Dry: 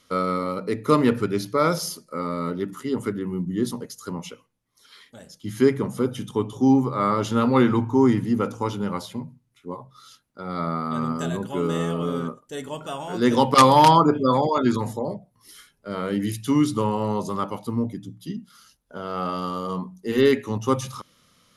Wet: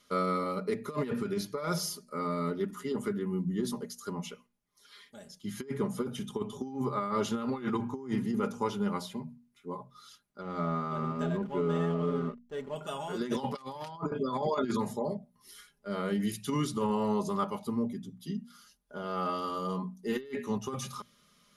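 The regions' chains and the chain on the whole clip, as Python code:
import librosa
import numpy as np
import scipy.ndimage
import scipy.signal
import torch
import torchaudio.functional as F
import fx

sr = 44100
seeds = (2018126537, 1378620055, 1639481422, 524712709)

y = fx.chain(x, sr, fx.backlash(play_db=-36.0),
    fx.lowpass(hz=2200.0, slope=6), at=(10.41, 12.76))
y = fx.hum_notches(y, sr, base_hz=60, count=4)
y = y + 0.62 * np.pad(y, (int(4.9 * sr / 1000.0), 0))[:len(y)]
y = fx.over_compress(y, sr, threshold_db=-21.0, ratio=-0.5)
y = F.gain(torch.from_numpy(y), -9.0).numpy()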